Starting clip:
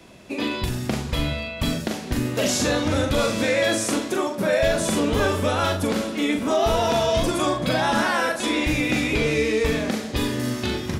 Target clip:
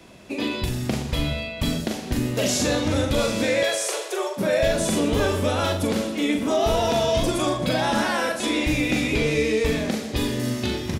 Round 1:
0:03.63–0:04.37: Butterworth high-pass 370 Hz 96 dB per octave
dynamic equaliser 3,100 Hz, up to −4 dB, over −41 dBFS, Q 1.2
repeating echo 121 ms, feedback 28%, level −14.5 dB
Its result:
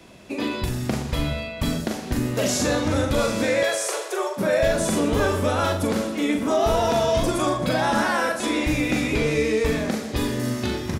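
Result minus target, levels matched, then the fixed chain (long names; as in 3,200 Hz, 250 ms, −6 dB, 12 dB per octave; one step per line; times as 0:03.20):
4,000 Hz band −3.0 dB
0:03.63–0:04.37: Butterworth high-pass 370 Hz 96 dB per octave
dynamic equaliser 1,300 Hz, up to −4 dB, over −41 dBFS, Q 1.2
repeating echo 121 ms, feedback 28%, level −14.5 dB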